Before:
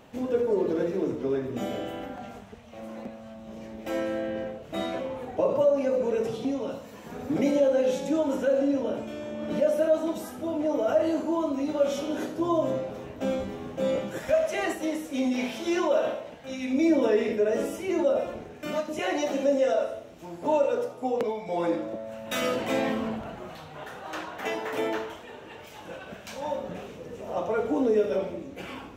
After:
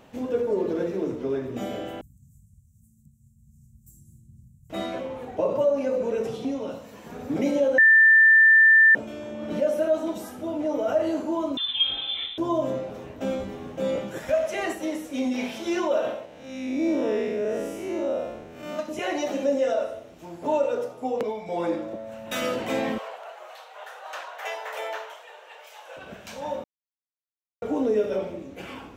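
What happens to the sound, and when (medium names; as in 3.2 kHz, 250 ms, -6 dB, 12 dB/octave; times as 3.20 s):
2.01–4.70 s: Chebyshev band-stop 150–7600 Hz, order 4
7.78–8.95 s: bleep 1.78 kHz -11.5 dBFS
11.57–12.38 s: frequency inversion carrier 3.8 kHz
16.25–18.79 s: spectral blur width 162 ms
22.98–25.97 s: steep high-pass 520 Hz
26.64–27.62 s: mute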